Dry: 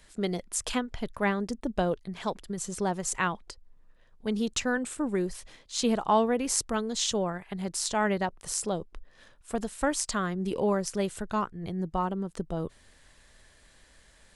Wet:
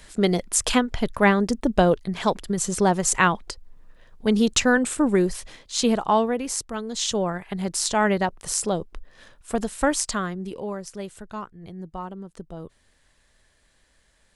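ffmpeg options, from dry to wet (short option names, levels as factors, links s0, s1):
-af "volume=7.94,afade=t=out:st=5.03:d=1.67:silence=0.251189,afade=t=in:st=6.7:d=0.68:silence=0.375837,afade=t=out:st=9.92:d=0.65:silence=0.281838"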